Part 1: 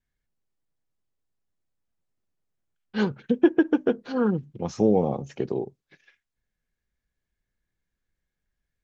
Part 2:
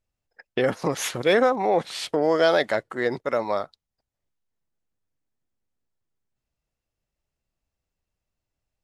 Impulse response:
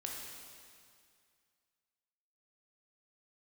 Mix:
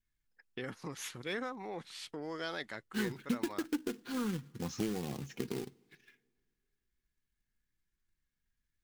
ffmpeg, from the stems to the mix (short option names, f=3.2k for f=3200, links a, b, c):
-filter_complex "[0:a]acrusher=bits=3:mode=log:mix=0:aa=0.000001,acompressor=threshold=-25dB:ratio=6,flanger=delay=2.7:depth=1.6:regen=69:speed=1:shape=sinusoidal,volume=0.5dB,asplit=2[a][b];[b]volume=-24dB[c];[1:a]volume=-14dB[d];[2:a]atrim=start_sample=2205[e];[c][e]afir=irnorm=-1:irlink=0[f];[a][d][f]amix=inputs=3:normalize=0,equalizer=f=610:t=o:w=0.96:g=-12.5"